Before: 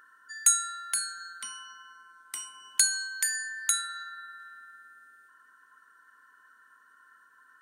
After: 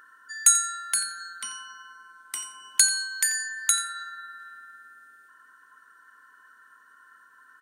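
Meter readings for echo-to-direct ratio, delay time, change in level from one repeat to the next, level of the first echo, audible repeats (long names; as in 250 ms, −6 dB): −15.5 dB, 88 ms, −16.0 dB, −15.5 dB, 2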